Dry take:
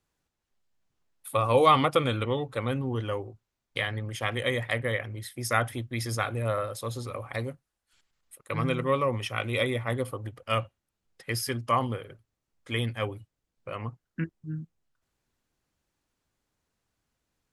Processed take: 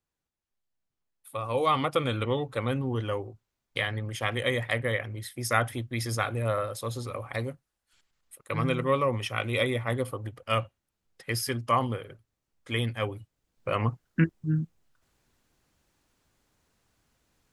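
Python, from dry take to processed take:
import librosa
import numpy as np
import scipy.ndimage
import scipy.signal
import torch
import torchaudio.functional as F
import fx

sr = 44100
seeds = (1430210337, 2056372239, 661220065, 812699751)

y = fx.gain(x, sr, db=fx.line((1.34, -8.5), (2.29, 0.5), (13.11, 0.5), (13.73, 8.5)))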